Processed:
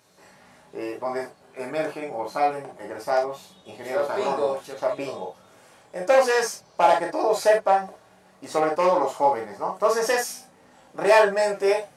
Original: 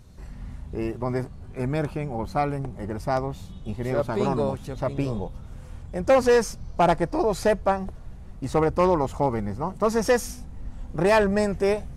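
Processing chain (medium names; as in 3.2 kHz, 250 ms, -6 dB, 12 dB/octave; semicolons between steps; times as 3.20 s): high-pass 470 Hz 12 dB/octave; gated-style reverb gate 80 ms flat, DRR -0.5 dB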